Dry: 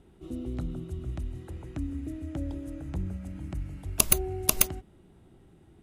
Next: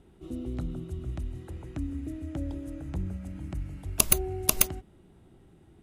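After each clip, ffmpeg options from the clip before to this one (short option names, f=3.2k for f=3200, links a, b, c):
-af anull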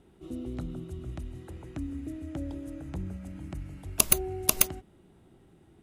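-af "lowshelf=f=98:g=-6.5"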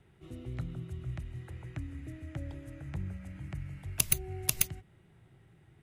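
-filter_complex "[0:a]equalizer=f=125:t=o:w=1:g=12,equalizer=f=250:t=o:w=1:g=-8,equalizer=f=2k:t=o:w=1:g=10,acrossover=split=320|3000[a][b][c];[b]acompressor=threshold=-37dB:ratio=6[d];[a][d][c]amix=inputs=3:normalize=0,volume=-5.5dB"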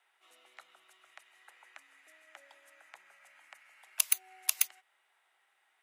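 -af "highpass=f=790:w=0.5412,highpass=f=790:w=1.3066"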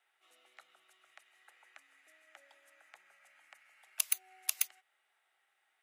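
-af "bandreject=f=990:w=8.5,volume=-4dB"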